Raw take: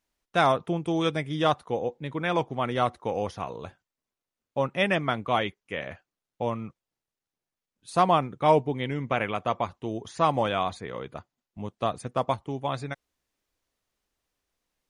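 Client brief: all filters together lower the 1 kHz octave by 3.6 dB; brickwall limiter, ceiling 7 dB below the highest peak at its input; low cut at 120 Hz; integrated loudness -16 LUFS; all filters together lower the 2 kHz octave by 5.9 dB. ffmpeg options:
-af "highpass=120,equalizer=f=1000:t=o:g=-3.5,equalizer=f=2000:t=o:g=-6.5,volume=5.96,alimiter=limit=0.944:level=0:latency=1"

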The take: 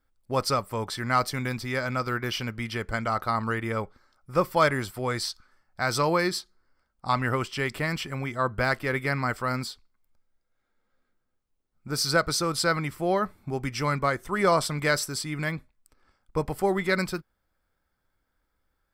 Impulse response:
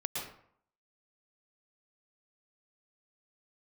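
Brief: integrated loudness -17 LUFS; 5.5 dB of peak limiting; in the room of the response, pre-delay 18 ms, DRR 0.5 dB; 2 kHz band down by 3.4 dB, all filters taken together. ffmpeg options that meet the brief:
-filter_complex "[0:a]equalizer=f=2000:t=o:g=-4.5,alimiter=limit=0.15:level=0:latency=1,asplit=2[s0][s1];[1:a]atrim=start_sample=2205,adelay=18[s2];[s1][s2]afir=irnorm=-1:irlink=0,volume=0.668[s3];[s0][s3]amix=inputs=2:normalize=0,volume=3.16"

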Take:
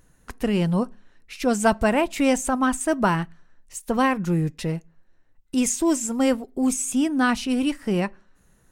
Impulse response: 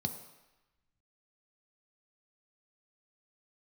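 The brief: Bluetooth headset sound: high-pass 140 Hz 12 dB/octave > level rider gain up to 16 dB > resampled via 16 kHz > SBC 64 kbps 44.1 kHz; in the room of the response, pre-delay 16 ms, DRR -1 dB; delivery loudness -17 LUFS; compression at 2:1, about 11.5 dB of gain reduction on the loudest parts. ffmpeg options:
-filter_complex "[0:a]acompressor=threshold=0.0178:ratio=2,asplit=2[s0][s1];[1:a]atrim=start_sample=2205,adelay=16[s2];[s1][s2]afir=irnorm=-1:irlink=0,volume=0.944[s3];[s0][s3]amix=inputs=2:normalize=0,highpass=140,dynaudnorm=m=6.31,aresample=16000,aresample=44100,volume=2.24" -ar 44100 -c:a sbc -b:a 64k

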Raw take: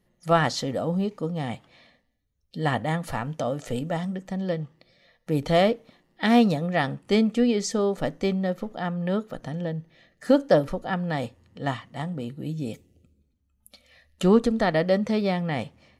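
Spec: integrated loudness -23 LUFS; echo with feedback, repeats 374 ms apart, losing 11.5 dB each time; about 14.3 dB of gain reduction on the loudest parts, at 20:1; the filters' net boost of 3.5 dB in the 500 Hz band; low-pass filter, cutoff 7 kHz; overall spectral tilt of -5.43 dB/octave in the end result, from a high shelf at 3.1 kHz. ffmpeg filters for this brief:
-af "lowpass=7000,equalizer=f=500:t=o:g=4,highshelf=f=3100:g=4,acompressor=threshold=0.0631:ratio=20,aecho=1:1:374|748|1122:0.266|0.0718|0.0194,volume=2.37"

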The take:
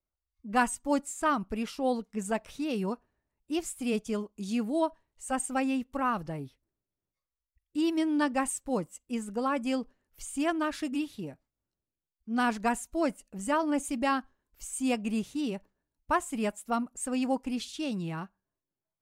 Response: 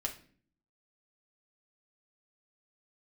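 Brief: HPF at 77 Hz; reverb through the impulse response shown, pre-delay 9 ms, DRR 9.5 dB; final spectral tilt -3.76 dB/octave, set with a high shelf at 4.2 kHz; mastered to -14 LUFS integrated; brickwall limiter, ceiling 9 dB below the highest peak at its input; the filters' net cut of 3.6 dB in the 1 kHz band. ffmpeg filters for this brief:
-filter_complex "[0:a]highpass=77,equalizer=f=1000:t=o:g=-5,highshelf=f=4200:g=4.5,alimiter=limit=0.0708:level=0:latency=1,asplit=2[s0][s1];[1:a]atrim=start_sample=2205,adelay=9[s2];[s1][s2]afir=irnorm=-1:irlink=0,volume=0.282[s3];[s0][s3]amix=inputs=2:normalize=0,volume=8.91"

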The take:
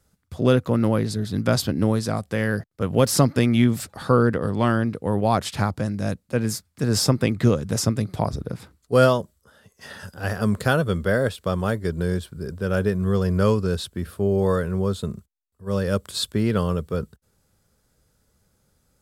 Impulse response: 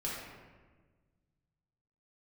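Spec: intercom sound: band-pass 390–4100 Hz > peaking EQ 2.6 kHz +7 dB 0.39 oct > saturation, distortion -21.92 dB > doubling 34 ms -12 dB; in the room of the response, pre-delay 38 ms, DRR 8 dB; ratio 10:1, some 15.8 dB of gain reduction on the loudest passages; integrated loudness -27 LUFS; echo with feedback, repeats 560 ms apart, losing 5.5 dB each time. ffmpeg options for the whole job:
-filter_complex "[0:a]acompressor=threshold=0.0398:ratio=10,aecho=1:1:560|1120|1680|2240|2800|3360|3920:0.531|0.281|0.149|0.079|0.0419|0.0222|0.0118,asplit=2[s0][s1];[1:a]atrim=start_sample=2205,adelay=38[s2];[s1][s2]afir=irnorm=-1:irlink=0,volume=0.266[s3];[s0][s3]amix=inputs=2:normalize=0,highpass=390,lowpass=4100,equalizer=f=2600:t=o:w=0.39:g=7,asoftclip=threshold=0.0631,asplit=2[s4][s5];[s5]adelay=34,volume=0.251[s6];[s4][s6]amix=inputs=2:normalize=0,volume=3.16"

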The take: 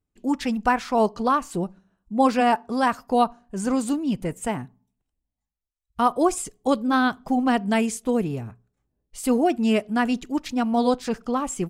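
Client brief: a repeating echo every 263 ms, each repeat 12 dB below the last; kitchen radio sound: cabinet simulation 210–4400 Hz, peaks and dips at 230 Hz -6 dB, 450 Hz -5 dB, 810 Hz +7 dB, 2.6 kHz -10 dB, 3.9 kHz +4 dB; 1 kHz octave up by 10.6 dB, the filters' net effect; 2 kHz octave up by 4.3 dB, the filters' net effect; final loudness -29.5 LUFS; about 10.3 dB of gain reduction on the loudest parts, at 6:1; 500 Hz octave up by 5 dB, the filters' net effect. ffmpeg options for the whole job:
-af "equalizer=f=500:t=o:g=5,equalizer=f=1000:t=o:g=7,equalizer=f=2000:t=o:g=3.5,acompressor=threshold=0.112:ratio=6,highpass=210,equalizer=f=230:t=q:w=4:g=-6,equalizer=f=450:t=q:w=4:g=-5,equalizer=f=810:t=q:w=4:g=7,equalizer=f=2600:t=q:w=4:g=-10,equalizer=f=3900:t=q:w=4:g=4,lowpass=f=4400:w=0.5412,lowpass=f=4400:w=1.3066,aecho=1:1:263|526|789:0.251|0.0628|0.0157,volume=0.562"

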